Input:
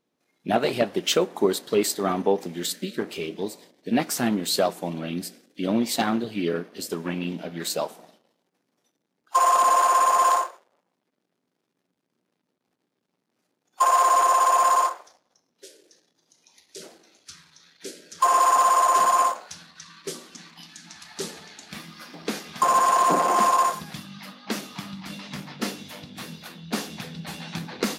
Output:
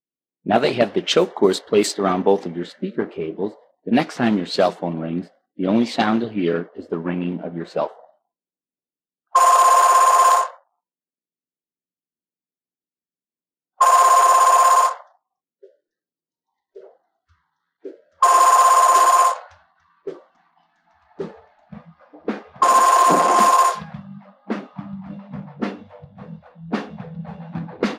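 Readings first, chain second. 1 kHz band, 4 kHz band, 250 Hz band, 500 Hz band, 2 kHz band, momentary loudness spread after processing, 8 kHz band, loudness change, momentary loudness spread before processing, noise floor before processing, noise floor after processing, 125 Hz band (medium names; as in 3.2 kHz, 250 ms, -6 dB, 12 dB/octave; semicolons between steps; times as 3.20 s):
+5.5 dB, +2.0 dB, +5.5 dB, +5.5 dB, +5.0 dB, 22 LU, +3.5 dB, +6.0 dB, 21 LU, -78 dBFS, under -85 dBFS, +5.5 dB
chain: spectral noise reduction 27 dB; level-controlled noise filter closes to 470 Hz, open at -16 dBFS; trim +5.5 dB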